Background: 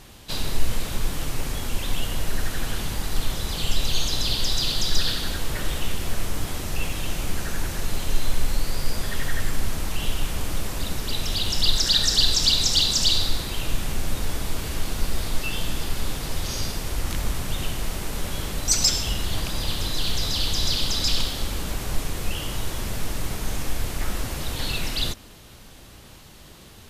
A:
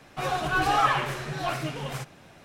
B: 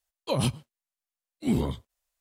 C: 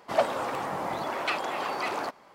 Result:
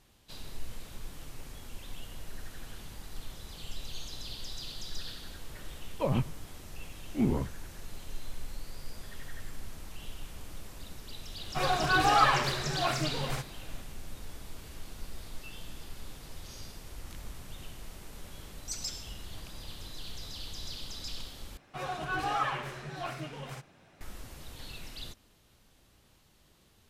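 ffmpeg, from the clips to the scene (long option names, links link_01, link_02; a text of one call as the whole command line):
ffmpeg -i bed.wav -i cue0.wav -i cue1.wav -filter_complex "[1:a]asplit=2[link_01][link_02];[0:a]volume=-17.5dB[link_03];[2:a]lowpass=frequency=2400:width=0.5412,lowpass=frequency=2400:width=1.3066[link_04];[link_02]highshelf=frequency=8200:gain=-3[link_05];[link_03]asplit=2[link_06][link_07];[link_06]atrim=end=21.574[link_08];[link_05]atrim=end=2.44,asetpts=PTS-STARTPTS,volume=-8.5dB[link_09];[link_07]atrim=start=24.006[link_10];[link_04]atrim=end=2.2,asetpts=PTS-STARTPTS,volume=-2.5dB,afade=type=in:duration=0.004:curve=hsin,afade=type=out:start_time=2.196:duration=0.004:curve=hsin,adelay=5720[link_11];[link_01]atrim=end=2.44,asetpts=PTS-STARTPTS,volume=-1dB,afade=type=in:duration=0.004:curve=hsin,afade=type=out:start_time=2.436:duration=0.004:curve=hsin,adelay=501858S[link_12];[link_08][link_09]acrossfade=duration=0.004:curve1=hsin:curve2=hsin[link_13];[link_13][link_10]acrossfade=duration=0.004:curve1=hsin:curve2=hsin[link_14];[link_14][link_11][link_12]amix=inputs=3:normalize=0" out.wav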